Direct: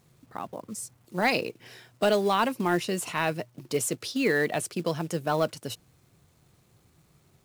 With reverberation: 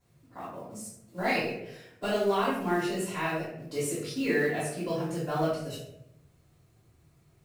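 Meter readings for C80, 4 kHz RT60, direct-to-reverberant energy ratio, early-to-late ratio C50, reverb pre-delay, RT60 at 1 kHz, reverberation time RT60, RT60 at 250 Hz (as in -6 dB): 5.5 dB, 0.45 s, -10.5 dB, 1.0 dB, 3 ms, 0.65 s, 0.80 s, 1.0 s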